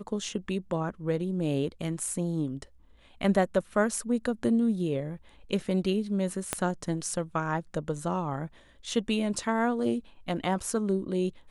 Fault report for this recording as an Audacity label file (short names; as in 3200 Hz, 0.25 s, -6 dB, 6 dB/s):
6.530000	6.530000	pop -11 dBFS